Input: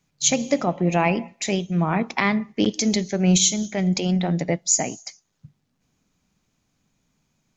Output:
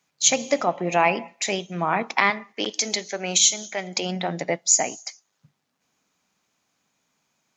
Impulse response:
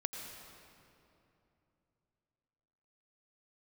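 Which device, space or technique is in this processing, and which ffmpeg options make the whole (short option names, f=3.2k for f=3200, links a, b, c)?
filter by subtraction: -filter_complex "[0:a]asplit=2[a][b];[b]lowpass=910,volume=-1[c];[a][c]amix=inputs=2:normalize=0,asettb=1/sr,asplit=3[d][e][f];[d]atrim=end=2.304[g];[e]atrim=start=2.3:end=3.97,asetpts=PTS-STARTPTS,afade=t=in:d=0.004:c=qsin,afade=t=out:st=1.666:d=0.004:c=qsin,highpass=f=470:p=1[h];[f]atrim=start=3.966[i];[g][h]acrossfade=d=0.004:c1=hsin:c2=qsin[j];[j][i]acrossfade=d=0.004:c1=qsin:c2=hsin,volume=1.5dB"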